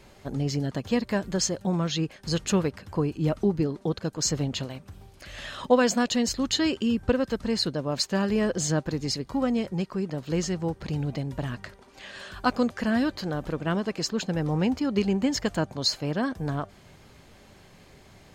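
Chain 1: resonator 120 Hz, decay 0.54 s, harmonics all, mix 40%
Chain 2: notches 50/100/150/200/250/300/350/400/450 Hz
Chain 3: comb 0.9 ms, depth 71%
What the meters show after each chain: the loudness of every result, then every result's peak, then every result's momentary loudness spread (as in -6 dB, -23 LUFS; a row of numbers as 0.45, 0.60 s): -31.0, -28.0, -25.5 LUFS; -12.5, -9.5, -9.0 dBFS; 10, 9, 9 LU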